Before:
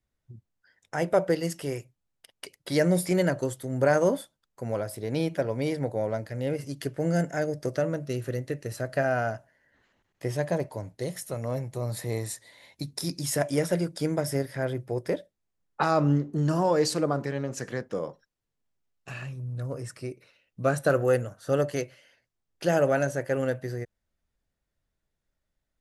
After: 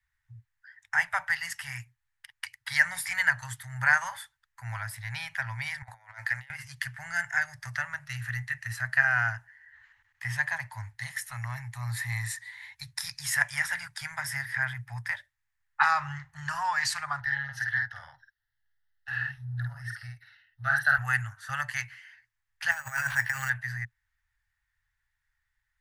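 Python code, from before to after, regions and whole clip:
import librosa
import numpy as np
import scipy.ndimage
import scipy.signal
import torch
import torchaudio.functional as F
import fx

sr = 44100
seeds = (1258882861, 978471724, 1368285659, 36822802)

y = fx.chain(x, sr, fx.low_shelf_res(hz=160.0, db=-12.5, q=1.5),
    fx.over_compress(threshold_db=-35.0, ratio=-0.5), at=(5.82, 6.5))
y = fx.chain(y, sr, fx.fixed_phaser(hz=1600.0, stages=8),
    fx.doubler(ms=50.0, db=-3.0), at=(17.2, 20.98))
y = fx.chain(y, sr, fx.over_compress(threshold_db=-27.0, ratio=-0.5),
    fx.resample_bad(factor=6, down='none', up='hold'), at=(22.71, 23.5))
y = scipy.signal.sosfilt(scipy.signal.cheby1(4, 1.0, [120.0, 840.0], 'bandstop', fs=sr, output='sos'), y)
y = fx.peak_eq(y, sr, hz=1800.0, db=15.0, octaves=0.63)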